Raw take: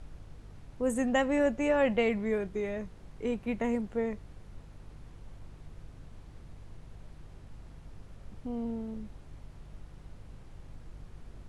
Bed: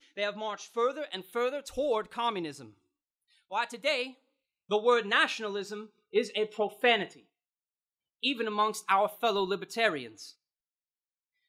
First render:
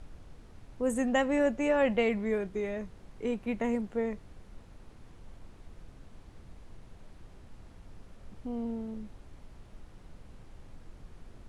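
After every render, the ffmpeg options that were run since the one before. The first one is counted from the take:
-af "bandreject=f=50:t=h:w=4,bandreject=f=100:t=h:w=4,bandreject=f=150:t=h:w=4"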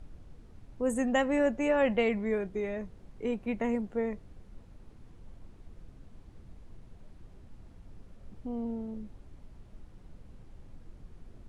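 -af "afftdn=nr=6:nf=-54"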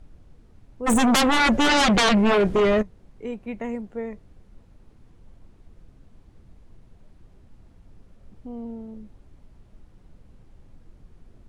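-filter_complex "[0:a]asplit=3[s0][s1][s2];[s0]afade=t=out:st=0.86:d=0.02[s3];[s1]aeval=exprs='0.178*sin(PI/2*5.62*val(0)/0.178)':c=same,afade=t=in:st=0.86:d=0.02,afade=t=out:st=2.81:d=0.02[s4];[s2]afade=t=in:st=2.81:d=0.02[s5];[s3][s4][s5]amix=inputs=3:normalize=0"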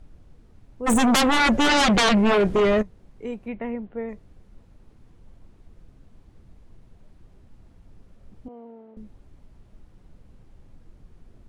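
-filter_complex "[0:a]asettb=1/sr,asplit=3[s0][s1][s2];[s0]atrim=end=3.484[s3];[s1]atrim=start=3.48:end=4.09,asetpts=PTS-STARTPTS,afade=t=in:d=0.004:c=qsin,afade=t=out:st=0.606:d=0.004:c=qsin,lowpass=f=3400:w=0.5412,lowpass=f=3400:w=1.3066[s4];[s2]atrim=start=4.086[s5];[s3][s4]acrossfade=d=0.004:c1=hsin:c2=qsin[s6];[s6][s5]acrossfade=d=0.004:c1=qsin:c2=hsin,asettb=1/sr,asplit=3[s7][s8][s9];[s7]atrim=end=8.484[s10];[s8]atrim=start=8.48:end=8.97,asetpts=PTS-STARTPTS,afade=t=in:d=0.004:c=qsin,afade=t=out:st=0.486:d=0.004:c=qsin,highpass=450,lowpass=2200[s11];[s9]atrim=start=8.966[s12];[s10][s11]acrossfade=d=0.004:c1=hsin:c2=qsin[s13];[s13][s12]acrossfade=d=0.004:c1=qsin:c2=hsin"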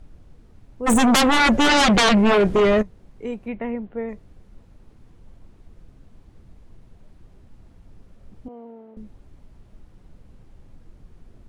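-af "volume=1.33"

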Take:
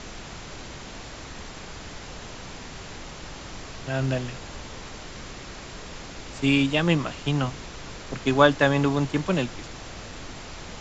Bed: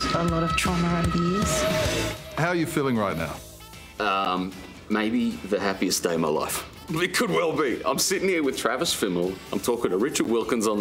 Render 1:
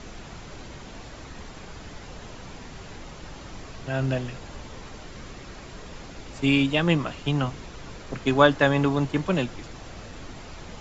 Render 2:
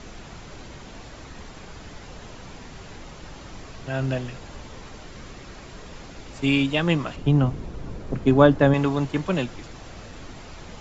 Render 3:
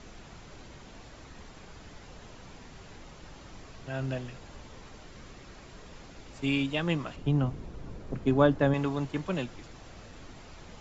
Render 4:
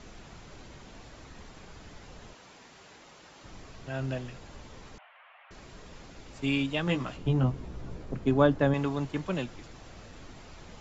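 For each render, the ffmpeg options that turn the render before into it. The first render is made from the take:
-af "afftdn=nr=6:nf=-41"
-filter_complex "[0:a]asettb=1/sr,asplit=3[s0][s1][s2];[s0]atrim=end=7.164[s3];[s1]atrim=start=7.16:end=8.74,asetpts=PTS-STARTPTS,afade=t=in:d=0.004:c=qsin,afade=t=out:st=1.576:d=0.004:c=qsin,tiltshelf=f=820:g=7.5[s4];[s2]atrim=start=8.736[s5];[s3][s4]acrossfade=d=0.004:c1=hsin:c2=qsin[s6];[s6][s5]acrossfade=d=0.004:c1=qsin:c2=hsin"
-af "volume=0.422"
-filter_complex "[0:a]asettb=1/sr,asplit=3[s0][s1][s2];[s0]atrim=end=2.334[s3];[s1]atrim=start=2.33:end=3.44,asetpts=PTS-STARTPTS,afade=t=in:d=0.004:c=qsin,afade=t=out:st=1.106:d=0.004:c=qsin,highpass=f=460:p=1[s4];[s2]atrim=start=3.436[s5];[s3][s4]acrossfade=d=0.004:c1=hsin:c2=qsin[s6];[s6][s5]acrossfade=d=0.004:c1=qsin:c2=hsin,asettb=1/sr,asplit=3[s7][s8][s9];[s7]atrim=end=4.984[s10];[s8]atrim=start=4.98:end=5.51,asetpts=PTS-STARTPTS,afade=t=in:d=0.004:c=qsin,afade=t=out:st=0.526:d=0.004:c=qsin,asuperpass=centerf=1400:order=12:qfactor=0.59[s11];[s9]atrim=start=5.506[s12];[s10][s11]acrossfade=d=0.004:c1=hsin:c2=qsin[s13];[s13][s12]acrossfade=d=0.004:c1=qsin:c2=hsin,asettb=1/sr,asplit=3[s14][s15][s16];[s14]atrim=end=6.854[s17];[s15]atrim=start=6.85:end=8.05,asetpts=PTS-STARTPTS,afade=t=in:d=0.004:c=qsin,afade=t=out:st=1.196:d=0.004:c=qsin,asplit=2[s18][s19];[s19]adelay=16,volume=0.631[s20];[s18][s20]amix=inputs=2:normalize=0,atrim=end_sample=52920[s21];[s16]atrim=start=8.046[s22];[s17][s21]acrossfade=d=0.004:c1=hsin:c2=qsin[s23];[s23][s22]acrossfade=d=0.004:c1=qsin:c2=hsin"

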